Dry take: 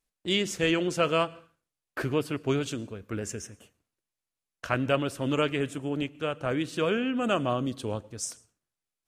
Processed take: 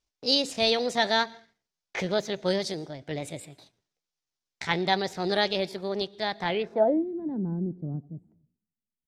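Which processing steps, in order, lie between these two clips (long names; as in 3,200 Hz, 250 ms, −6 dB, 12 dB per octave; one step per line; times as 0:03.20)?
low-pass filter sweep 4,100 Hz → 160 Hz, 0:06.43–0:07.06
pitch shifter +5.5 semitones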